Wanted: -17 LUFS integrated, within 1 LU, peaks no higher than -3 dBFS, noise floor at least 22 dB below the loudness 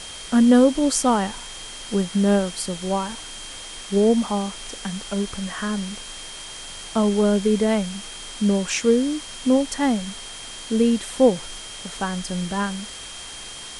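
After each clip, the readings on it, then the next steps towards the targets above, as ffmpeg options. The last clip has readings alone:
steady tone 3.2 kHz; tone level -39 dBFS; noise floor -37 dBFS; noise floor target -44 dBFS; loudness -22.0 LUFS; peak level -5.0 dBFS; loudness target -17.0 LUFS
-> -af "bandreject=f=3200:w=30"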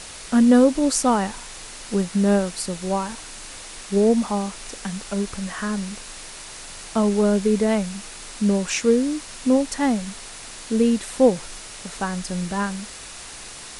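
steady tone not found; noise floor -39 dBFS; noise floor target -44 dBFS
-> -af "afftdn=nr=6:nf=-39"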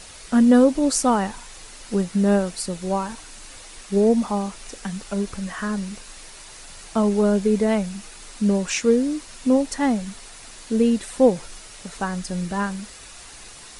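noise floor -42 dBFS; noise floor target -44 dBFS
-> -af "afftdn=nr=6:nf=-42"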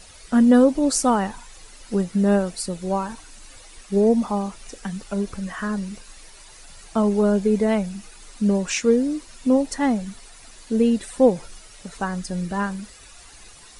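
noise floor -46 dBFS; loudness -22.0 LUFS; peak level -5.0 dBFS; loudness target -17.0 LUFS
-> -af "volume=1.78,alimiter=limit=0.708:level=0:latency=1"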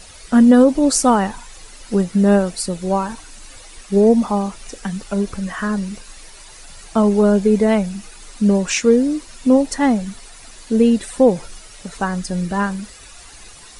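loudness -17.0 LUFS; peak level -3.0 dBFS; noise floor -41 dBFS

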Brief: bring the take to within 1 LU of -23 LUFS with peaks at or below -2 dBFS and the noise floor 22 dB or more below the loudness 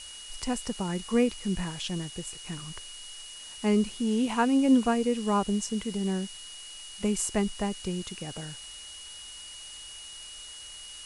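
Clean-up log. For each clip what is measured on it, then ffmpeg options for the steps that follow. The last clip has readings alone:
steady tone 2.9 kHz; tone level -44 dBFS; noise floor -44 dBFS; noise floor target -51 dBFS; loudness -29.0 LUFS; peak level -12.5 dBFS; loudness target -23.0 LUFS
-> -af "bandreject=f=2900:w=30"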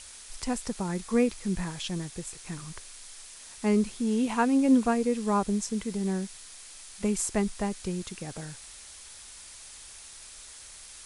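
steady tone not found; noise floor -47 dBFS; noise floor target -51 dBFS
-> -af "afftdn=nr=6:nf=-47"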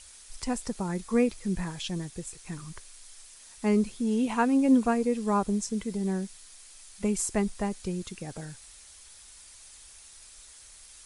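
noise floor -51 dBFS; loudness -29.0 LUFS; peak level -12.5 dBFS; loudness target -23.0 LUFS
-> -af "volume=2"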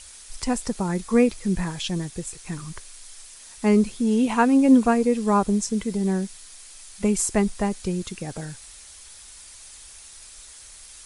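loudness -23.0 LUFS; peak level -6.5 dBFS; noise floor -45 dBFS

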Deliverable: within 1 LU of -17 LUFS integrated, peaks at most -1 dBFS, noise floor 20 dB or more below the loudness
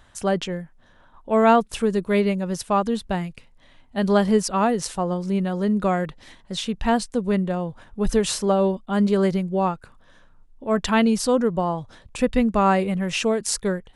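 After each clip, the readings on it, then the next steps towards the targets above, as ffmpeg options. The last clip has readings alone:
loudness -22.5 LUFS; peak level -7.0 dBFS; loudness target -17.0 LUFS
-> -af "volume=1.88"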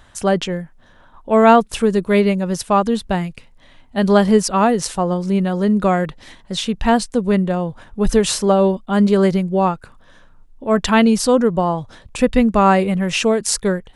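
loudness -17.0 LUFS; peak level -1.5 dBFS; noise floor -48 dBFS

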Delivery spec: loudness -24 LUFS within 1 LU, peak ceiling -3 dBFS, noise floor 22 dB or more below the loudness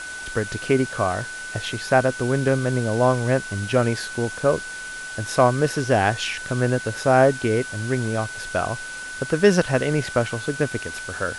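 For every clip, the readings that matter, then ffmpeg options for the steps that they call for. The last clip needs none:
steady tone 1.5 kHz; tone level -32 dBFS; noise floor -34 dBFS; noise floor target -45 dBFS; loudness -22.5 LUFS; peak level -3.0 dBFS; loudness target -24.0 LUFS
-> -af "bandreject=f=1500:w=30"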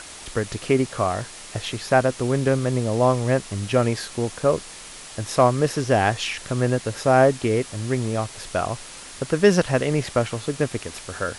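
steady tone not found; noise floor -40 dBFS; noise floor target -45 dBFS
-> -af "afftdn=nr=6:nf=-40"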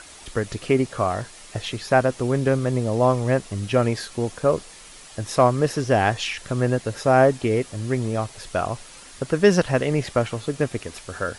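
noise floor -44 dBFS; noise floor target -45 dBFS
-> -af "afftdn=nr=6:nf=-44"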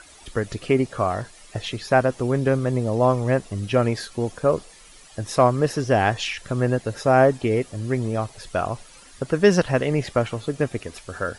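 noise floor -48 dBFS; loudness -22.5 LUFS; peak level -3.0 dBFS; loudness target -24.0 LUFS
-> -af "volume=0.841"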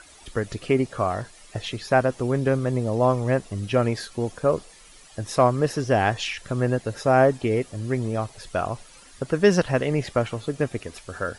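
loudness -24.0 LUFS; peak level -4.5 dBFS; noise floor -49 dBFS

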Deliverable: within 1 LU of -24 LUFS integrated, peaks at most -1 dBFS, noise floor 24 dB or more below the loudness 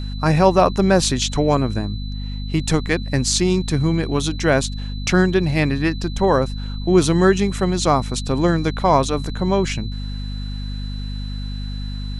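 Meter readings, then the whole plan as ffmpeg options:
hum 50 Hz; highest harmonic 250 Hz; hum level -24 dBFS; steady tone 4 kHz; tone level -38 dBFS; loudness -20.0 LUFS; peak level -1.5 dBFS; loudness target -24.0 LUFS
-> -af "bandreject=f=50:t=h:w=6,bandreject=f=100:t=h:w=6,bandreject=f=150:t=h:w=6,bandreject=f=200:t=h:w=6,bandreject=f=250:t=h:w=6"
-af "bandreject=f=4000:w=30"
-af "volume=0.631"

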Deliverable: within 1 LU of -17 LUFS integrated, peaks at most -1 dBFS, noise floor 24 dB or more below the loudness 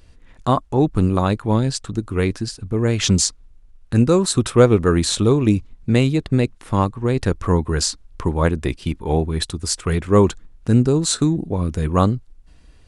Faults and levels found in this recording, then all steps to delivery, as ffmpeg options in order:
loudness -19.5 LUFS; peak level -1.5 dBFS; loudness target -17.0 LUFS
-> -af "volume=1.33,alimiter=limit=0.891:level=0:latency=1"

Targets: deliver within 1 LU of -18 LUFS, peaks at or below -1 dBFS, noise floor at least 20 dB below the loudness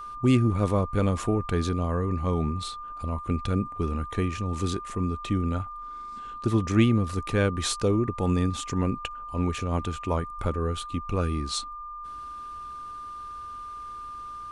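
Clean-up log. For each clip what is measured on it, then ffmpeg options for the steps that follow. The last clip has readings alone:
steady tone 1.2 kHz; tone level -36 dBFS; loudness -27.5 LUFS; peak level -9.0 dBFS; loudness target -18.0 LUFS
-> -af "bandreject=f=1200:w=30"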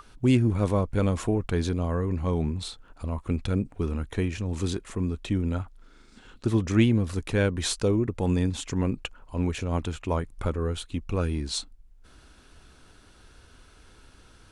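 steady tone not found; loudness -27.5 LUFS; peak level -9.0 dBFS; loudness target -18.0 LUFS
-> -af "volume=2.99,alimiter=limit=0.891:level=0:latency=1"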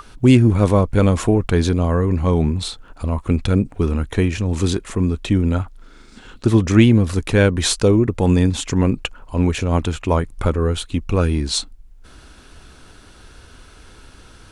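loudness -18.0 LUFS; peak level -1.0 dBFS; noise floor -45 dBFS

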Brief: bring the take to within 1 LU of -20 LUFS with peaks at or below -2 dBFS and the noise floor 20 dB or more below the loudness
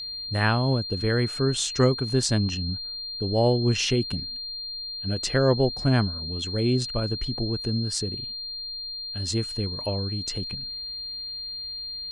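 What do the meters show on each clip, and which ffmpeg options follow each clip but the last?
steady tone 4.2 kHz; tone level -32 dBFS; loudness -26.0 LUFS; peak level -8.5 dBFS; loudness target -20.0 LUFS
-> -af "bandreject=f=4200:w=30"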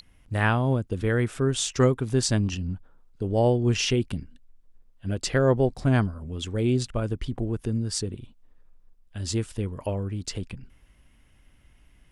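steady tone not found; loudness -26.0 LUFS; peak level -9.0 dBFS; loudness target -20.0 LUFS
-> -af "volume=2"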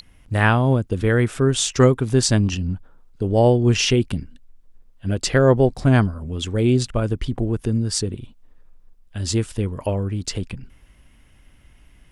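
loudness -20.0 LUFS; peak level -3.0 dBFS; noise floor -53 dBFS

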